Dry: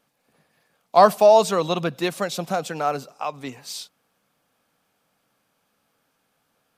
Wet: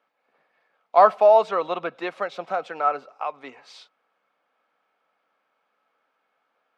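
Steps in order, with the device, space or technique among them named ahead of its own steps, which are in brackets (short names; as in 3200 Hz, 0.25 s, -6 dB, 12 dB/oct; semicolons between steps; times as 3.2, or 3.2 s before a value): tin-can telephone (BPF 490–2300 Hz; small resonant body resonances 1300/2200 Hz, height 9 dB, ringing for 85 ms); dynamic EQ 6900 Hz, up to -4 dB, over -45 dBFS, Q 0.79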